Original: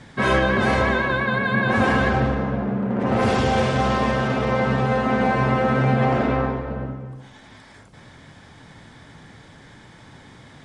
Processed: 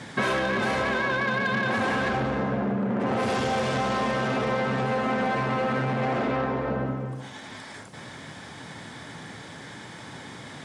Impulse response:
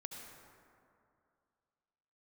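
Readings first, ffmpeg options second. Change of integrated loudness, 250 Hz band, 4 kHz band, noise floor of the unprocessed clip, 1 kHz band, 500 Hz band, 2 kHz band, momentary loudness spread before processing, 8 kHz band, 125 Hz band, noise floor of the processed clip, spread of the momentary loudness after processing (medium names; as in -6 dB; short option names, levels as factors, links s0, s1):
-5.5 dB, -5.5 dB, -2.5 dB, -47 dBFS, -4.5 dB, -5.0 dB, -4.0 dB, 6 LU, -0.5 dB, -8.0 dB, -42 dBFS, 16 LU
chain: -filter_complex "[0:a]asoftclip=type=tanh:threshold=0.133,highpass=100,lowshelf=f=160:g=-5,acompressor=threshold=0.0355:ratio=6,asplit=2[s0][s1];[s1]aderivative[s2];[1:a]atrim=start_sample=2205,asetrate=32634,aresample=44100[s3];[s2][s3]afir=irnorm=-1:irlink=0,volume=0.668[s4];[s0][s4]amix=inputs=2:normalize=0,volume=2"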